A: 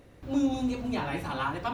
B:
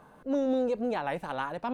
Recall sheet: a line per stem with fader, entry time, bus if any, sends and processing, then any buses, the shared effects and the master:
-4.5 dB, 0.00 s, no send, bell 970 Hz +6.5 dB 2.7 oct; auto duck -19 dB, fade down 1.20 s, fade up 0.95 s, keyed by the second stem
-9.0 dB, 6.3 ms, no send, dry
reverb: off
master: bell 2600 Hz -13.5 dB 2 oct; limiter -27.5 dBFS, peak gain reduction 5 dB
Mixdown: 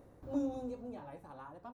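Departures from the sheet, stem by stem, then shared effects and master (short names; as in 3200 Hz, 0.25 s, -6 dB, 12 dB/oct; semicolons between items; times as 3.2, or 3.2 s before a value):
stem B -9.0 dB -> -16.5 dB; master: missing limiter -27.5 dBFS, peak gain reduction 5 dB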